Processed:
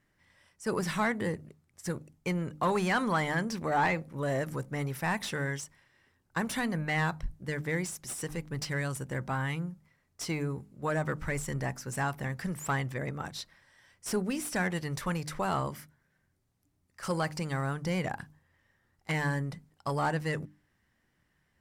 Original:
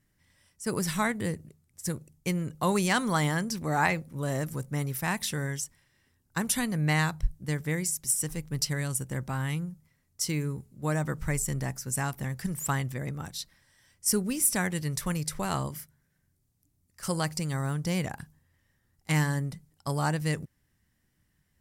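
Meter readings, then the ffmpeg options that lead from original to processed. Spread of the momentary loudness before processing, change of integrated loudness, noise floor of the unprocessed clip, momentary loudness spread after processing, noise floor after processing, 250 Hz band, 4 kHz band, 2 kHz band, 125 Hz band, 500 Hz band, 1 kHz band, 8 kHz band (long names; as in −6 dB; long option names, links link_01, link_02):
11 LU, −3.0 dB, −73 dBFS, 11 LU, −74 dBFS, −2.5 dB, −5.0 dB, 0.0 dB, −4.0 dB, +0.5 dB, +0.5 dB, −10.5 dB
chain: -filter_complex "[0:a]asoftclip=type=tanh:threshold=-21.5dB,bandreject=frequency=50:width_type=h:width=6,bandreject=frequency=100:width_type=h:width=6,bandreject=frequency=150:width_type=h:width=6,bandreject=frequency=200:width_type=h:width=6,bandreject=frequency=250:width_type=h:width=6,bandreject=frequency=300:width_type=h:width=6,asplit=2[link_01][link_02];[link_02]highpass=frequency=720:poles=1,volume=11dB,asoftclip=type=tanh:threshold=-19.5dB[link_03];[link_01][link_03]amix=inputs=2:normalize=0,lowpass=frequency=1400:poles=1,volume=-6dB,volume=2dB"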